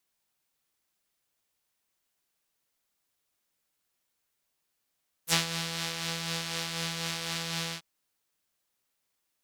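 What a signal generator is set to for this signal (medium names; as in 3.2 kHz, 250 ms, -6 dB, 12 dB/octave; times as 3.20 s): synth patch with tremolo E3, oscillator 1 triangle, oscillator 2 saw, interval 0 st, oscillator 2 level -9 dB, sub -20 dB, noise -22.5 dB, filter bandpass, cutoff 3.9 kHz, Q 1.2, filter decay 0.06 s, filter sustain 5%, attack 60 ms, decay 0.13 s, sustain -10.5 dB, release 0.08 s, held 2.46 s, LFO 4 Hz, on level 3.5 dB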